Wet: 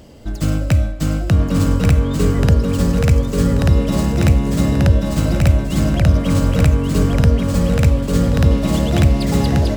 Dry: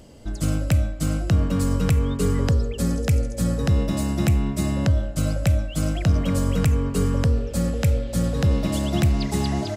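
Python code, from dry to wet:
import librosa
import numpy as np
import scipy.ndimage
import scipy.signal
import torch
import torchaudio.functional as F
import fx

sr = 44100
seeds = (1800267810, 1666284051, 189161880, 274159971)

y = fx.echo_feedback(x, sr, ms=1134, feedback_pct=30, wet_db=-3.0)
y = fx.running_max(y, sr, window=3)
y = y * librosa.db_to_amplitude(5.0)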